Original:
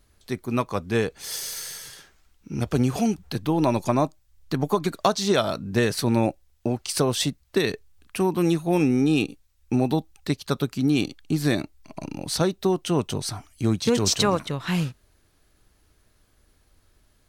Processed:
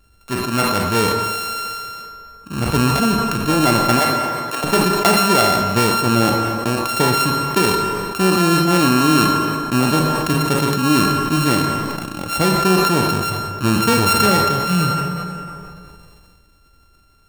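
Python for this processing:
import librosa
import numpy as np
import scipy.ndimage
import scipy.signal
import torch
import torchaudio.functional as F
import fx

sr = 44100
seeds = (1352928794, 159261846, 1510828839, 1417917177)

y = np.r_[np.sort(x[:len(x) // 32 * 32].reshape(-1, 32), axis=1).ravel(), x[len(x) // 32 * 32:]]
y = fx.highpass(y, sr, hz=460.0, slope=24, at=(3.99, 4.64))
y = fx.rev_fdn(y, sr, rt60_s=2.5, lf_ratio=0.85, hf_ratio=0.65, size_ms=96.0, drr_db=5.0)
y = fx.sustainer(y, sr, db_per_s=23.0)
y = F.gain(torch.from_numpy(y), 4.0).numpy()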